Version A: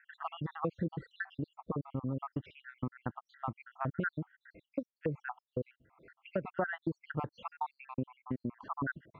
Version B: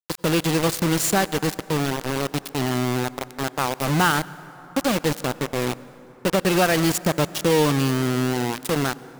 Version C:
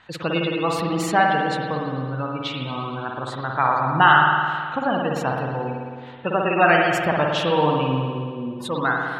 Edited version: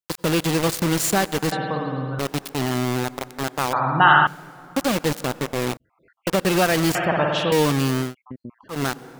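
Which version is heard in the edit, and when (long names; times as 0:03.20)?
B
0:01.52–0:02.19: punch in from C
0:03.73–0:04.27: punch in from C
0:05.77–0:06.27: punch in from A
0:06.95–0:07.52: punch in from C
0:08.07–0:08.76: punch in from A, crossfade 0.16 s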